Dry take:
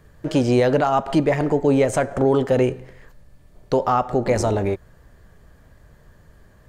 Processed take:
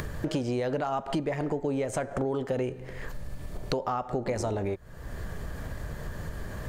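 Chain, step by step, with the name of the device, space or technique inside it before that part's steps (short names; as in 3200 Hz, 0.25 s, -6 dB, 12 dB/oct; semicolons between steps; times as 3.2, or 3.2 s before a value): upward and downward compression (upward compressor, threshold -22 dBFS; compressor 6:1, threshold -27 dBFS, peak gain reduction 13.5 dB)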